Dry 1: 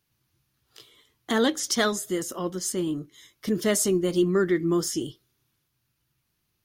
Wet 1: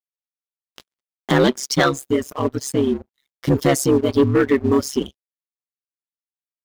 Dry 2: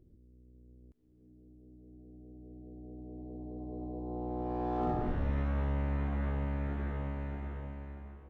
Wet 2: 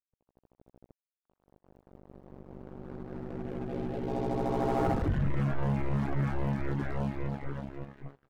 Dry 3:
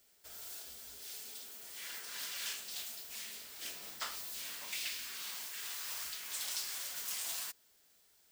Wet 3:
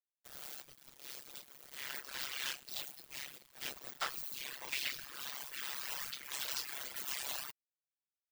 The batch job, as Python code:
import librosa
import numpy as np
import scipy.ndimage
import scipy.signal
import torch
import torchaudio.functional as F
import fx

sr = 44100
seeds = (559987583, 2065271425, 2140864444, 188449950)

y = fx.peak_eq(x, sr, hz=9400.0, db=-10.5, octaves=1.9)
y = y * np.sin(2.0 * np.pi * 68.0 * np.arange(len(y)) / sr)
y = np.sign(y) * np.maximum(np.abs(y) - 10.0 ** (-55.0 / 20.0), 0.0)
y = fx.dereverb_blind(y, sr, rt60_s=1.5)
y = fx.leveller(y, sr, passes=2)
y = y * 10.0 ** (6.5 / 20.0)